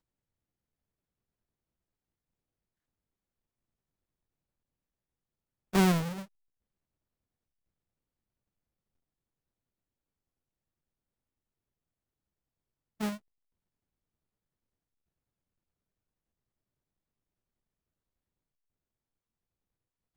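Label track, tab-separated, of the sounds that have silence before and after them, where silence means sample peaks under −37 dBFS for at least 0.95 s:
5.730000	6.200000	sound
13.010000	13.130000	sound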